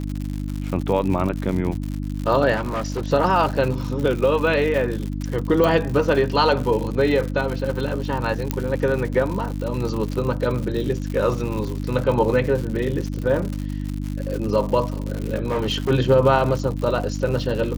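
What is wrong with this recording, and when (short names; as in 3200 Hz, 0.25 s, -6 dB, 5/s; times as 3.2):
crackle 130/s -27 dBFS
hum 50 Hz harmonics 6 -27 dBFS
2.55–3.1 clipped -21 dBFS
5.64 pop
8.51 pop -7 dBFS
15.46–15.91 clipped -18 dBFS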